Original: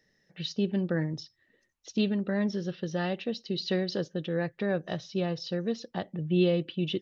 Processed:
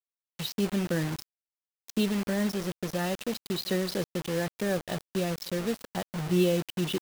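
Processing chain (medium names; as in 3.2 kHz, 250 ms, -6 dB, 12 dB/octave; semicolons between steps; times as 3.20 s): reverse echo 61 ms -22.5 dB; bit crusher 6-bit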